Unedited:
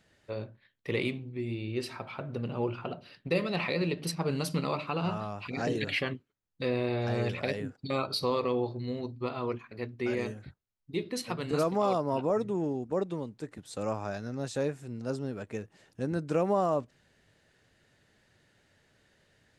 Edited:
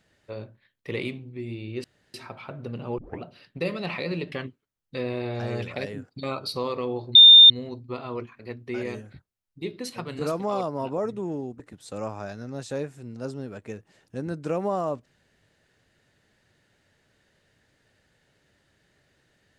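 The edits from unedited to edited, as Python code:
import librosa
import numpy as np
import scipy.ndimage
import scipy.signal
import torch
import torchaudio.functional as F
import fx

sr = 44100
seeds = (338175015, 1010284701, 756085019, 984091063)

y = fx.edit(x, sr, fx.insert_room_tone(at_s=1.84, length_s=0.3),
    fx.tape_start(start_s=2.68, length_s=0.25),
    fx.cut(start_s=4.02, length_s=1.97),
    fx.insert_tone(at_s=8.82, length_s=0.35, hz=3620.0, db=-6.5),
    fx.cut(start_s=12.92, length_s=0.53), tone=tone)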